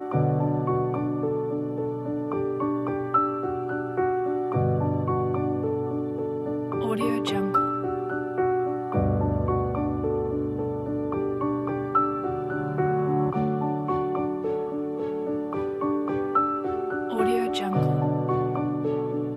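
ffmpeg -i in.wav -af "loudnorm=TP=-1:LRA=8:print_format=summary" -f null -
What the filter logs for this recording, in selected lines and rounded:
Input Integrated:    -26.4 LUFS
Input True Peak:     -11.3 dBTP
Input LRA:             1.6 LU
Input Threshold:     -36.4 LUFS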